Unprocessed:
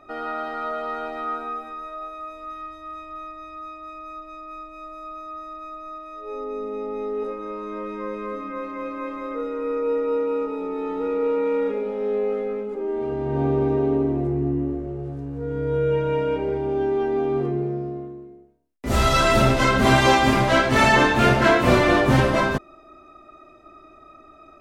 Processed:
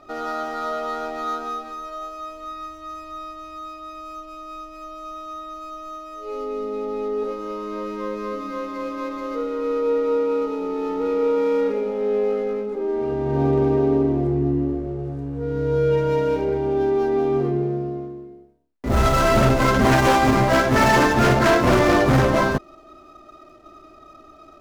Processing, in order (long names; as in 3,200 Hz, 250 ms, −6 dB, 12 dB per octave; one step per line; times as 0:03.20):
running median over 15 samples
wave folding −12 dBFS
level +2.5 dB